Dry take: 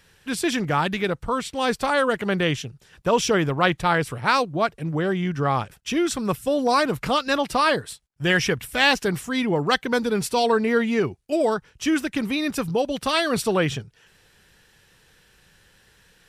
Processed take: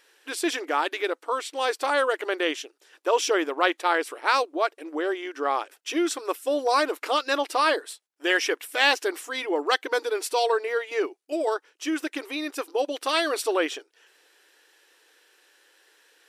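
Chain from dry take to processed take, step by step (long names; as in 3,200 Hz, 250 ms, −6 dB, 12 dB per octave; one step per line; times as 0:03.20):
0:10.36–0:12.79: shaped tremolo saw down 1.8 Hz, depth 40%
linear-phase brick-wall high-pass 280 Hz
level −2 dB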